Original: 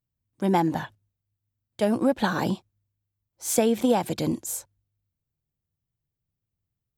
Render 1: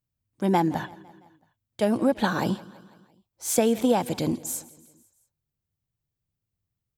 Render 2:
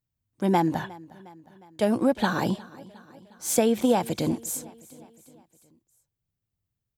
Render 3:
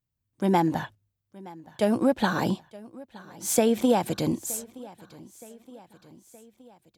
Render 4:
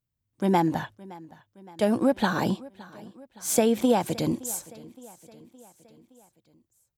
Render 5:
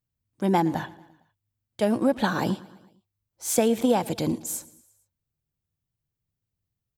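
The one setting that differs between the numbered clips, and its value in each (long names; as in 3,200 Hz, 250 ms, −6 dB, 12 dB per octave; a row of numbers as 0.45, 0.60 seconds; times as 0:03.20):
repeating echo, delay time: 168, 359, 920, 567, 114 milliseconds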